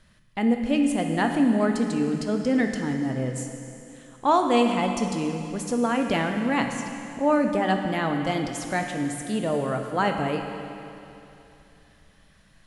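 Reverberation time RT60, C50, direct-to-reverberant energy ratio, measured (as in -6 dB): 2.9 s, 4.5 dB, 3.5 dB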